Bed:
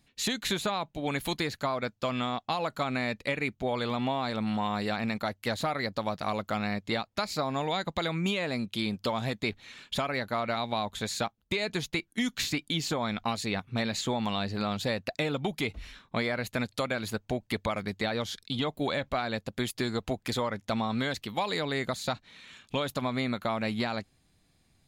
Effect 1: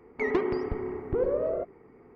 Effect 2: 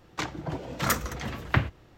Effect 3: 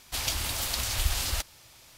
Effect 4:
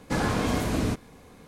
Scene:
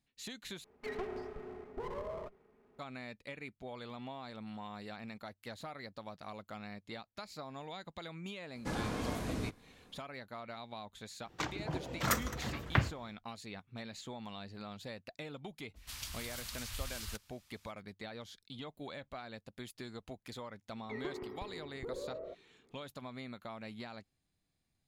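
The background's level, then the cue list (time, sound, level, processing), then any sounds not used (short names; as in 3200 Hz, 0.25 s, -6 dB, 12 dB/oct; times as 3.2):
bed -15.5 dB
0.64 replace with 1 -12 dB + minimum comb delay 4.8 ms
8.55 add 4 -11.5 dB
11.21 add 2 -5.5 dB, fades 0.10 s
15.75 add 3 -14 dB, fades 0.02 s + band shelf 510 Hz -9.5 dB
20.7 add 1 -15.5 dB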